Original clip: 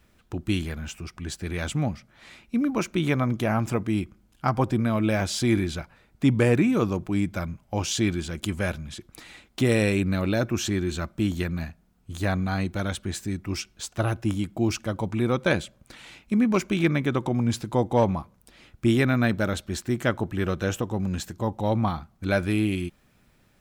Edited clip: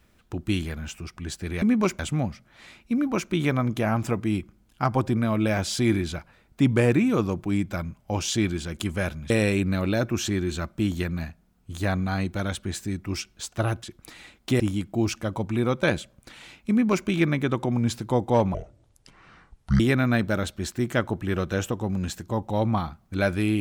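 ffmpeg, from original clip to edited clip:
-filter_complex "[0:a]asplit=8[a][b][c][d][e][f][g][h];[a]atrim=end=1.622[i];[b]atrim=start=16.328:end=16.702[j];[c]atrim=start=1.618:end=8.932[k];[d]atrim=start=9.698:end=14.232[l];[e]atrim=start=8.928:end=9.702[m];[f]atrim=start=14.228:end=18.174[n];[g]atrim=start=18.17:end=18.9,asetpts=PTS-STARTPTS,asetrate=25578,aresample=44100,atrim=end_sample=55505,asetpts=PTS-STARTPTS[o];[h]atrim=start=18.896[p];[i][j]acrossfade=d=0.004:c1=hsin:c2=hsin[q];[q][k]acrossfade=d=0.004:c1=hsin:c2=hsin[r];[r][l]acrossfade=d=0.004:c1=hsin:c2=hsin[s];[s][m]acrossfade=d=0.004:c1=hsin:c2=hsin[t];[t][n]acrossfade=d=0.004:c1=hsin:c2=hsin[u];[u][o]acrossfade=d=0.004:c1=hsin:c2=hsin[v];[v][p]acrossfade=d=0.004:c1=hsin:c2=hsin"

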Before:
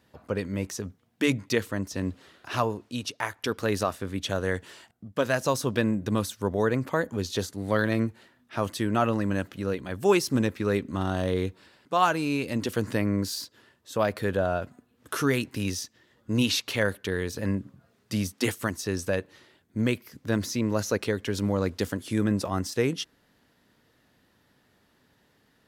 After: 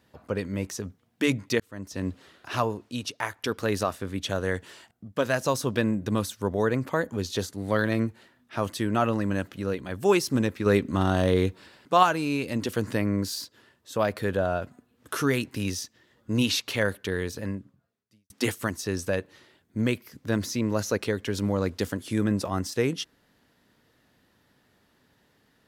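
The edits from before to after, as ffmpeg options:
-filter_complex "[0:a]asplit=5[a][b][c][d][e];[a]atrim=end=1.6,asetpts=PTS-STARTPTS,afade=t=out:st=1.596:d=0.004:c=hsin[f];[b]atrim=start=1.6:end=10.662,asetpts=PTS-STARTPTS,afade=t=in:d=0.46[g];[c]atrim=start=10.658:end=12.032,asetpts=PTS-STARTPTS,volume=4.5dB[h];[d]atrim=start=12.028:end=18.3,asetpts=PTS-STARTPTS,afade=t=out:st=5.232:d=1.04:c=qua[i];[e]atrim=start=18.3,asetpts=PTS-STARTPTS,afade=t=in:d=0.004:c=hsin[j];[f][g]concat=n=2:v=0:a=1[k];[k][h]acrossfade=d=0.004:c1=hsin:c2=hsin[l];[i][j]concat=n=2:v=0:a=1[m];[l][m]acrossfade=d=0.004:c1=hsin:c2=hsin"

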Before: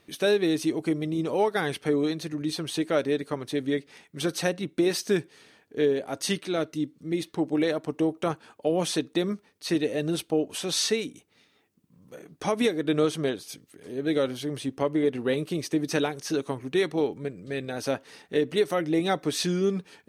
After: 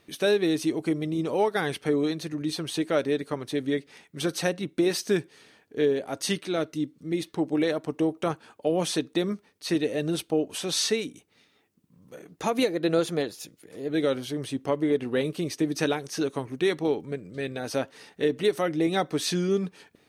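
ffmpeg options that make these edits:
-filter_complex "[0:a]asplit=3[a][b][c];[a]atrim=end=12.314[d];[b]atrim=start=12.31:end=14.02,asetpts=PTS-STARTPTS,asetrate=47628,aresample=44100[e];[c]atrim=start=14.016[f];[d][e]acrossfade=d=0.004:c1=hsin:c2=hsin[g];[g][f]acrossfade=d=0.004:c1=hsin:c2=hsin"

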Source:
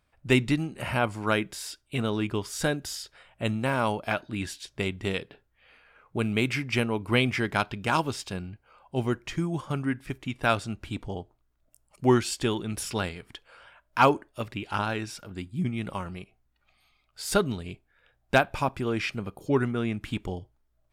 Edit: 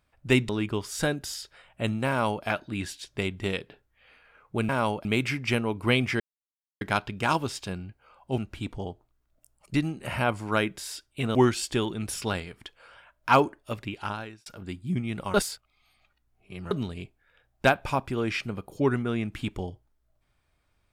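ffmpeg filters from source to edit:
-filter_complex "[0:a]asplit=11[a][b][c][d][e][f][g][h][i][j][k];[a]atrim=end=0.492[l];[b]atrim=start=2.098:end=6.302[m];[c]atrim=start=3.698:end=4.062[n];[d]atrim=start=6.298:end=7.45,asetpts=PTS-STARTPTS,afade=t=out:st=1.148:d=0.004:c=hsin,apad=pad_dur=0.61[o];[e]atrim=start=7.45:end=9.022,asetpts=PTS-STARTPTS,afade=t=in:d=0.004:c=hsin[p];[f]atrim=start=10.678:end=12.042[q];[g]atrim=start=0.488:end=2.102[r];[h]atrim=start=12.038:end=15.15,asetpts=PTS-STARTPTS,afade=t=out:st=2.522:d=0.59[s];[i]atrim=start=15.15:end=16.032,asetpts=PTS-STARTPTS,afade=t=in:d=0.004:c=hsin[t];[j]atrim=start=16.028:end=17.402,asetpts=PTS-STARTPTS,areverse[u];[k]atrim=start=17.398[v];[l][m]acrossfade=d=0.004:c1=hsin:c2=hsin[w];[w][n]acrossfade=d=0.004:c1=hsin:c2=hsin[x];[o][p]concat=n=2:v=0:a=1[y];[x][y]acrossfade=d=0.004:c1=hsin:c2=hsin[z];[z][q]acrossfade=d=0.004:c1=hsin:c2=hsin[aa];[aa][r]acrossfade=d=0.004:c1=hsin:c2=hsin[ab];[s][t]concat=n=2:v=0:a=1[ac];[ab][ac]acrossfade=d=0.004:c1=hsin:c2=hsin[ad];[ad][u]acrossfade=d=0.004:c1=hsin:c2=hsin[ae];[ae][v]acrossfade=d=0.004:c1=hsin:c2=hsin"

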